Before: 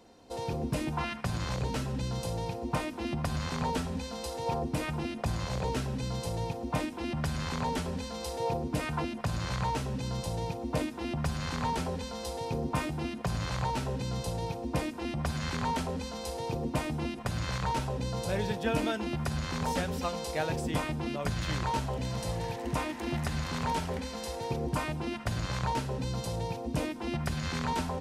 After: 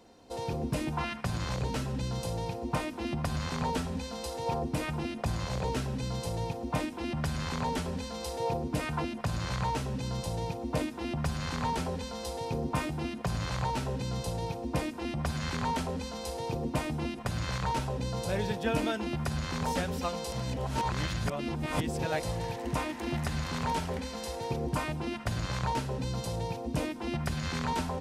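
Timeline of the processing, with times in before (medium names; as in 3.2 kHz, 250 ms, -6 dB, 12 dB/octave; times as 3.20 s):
20.32–22.23 s: reverse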